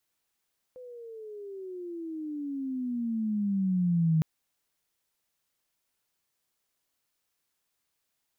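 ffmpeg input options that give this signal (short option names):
-f lavfi -i "aevalsrc='pow(10,(-20.5+22*(t/3.46-1))/20)*sin(2*PI*510*3.46/(-20.5*log(2)/12)*(exp(-20.5*log(2)/12*t/3.46)-1))':d=3.46:s=44100"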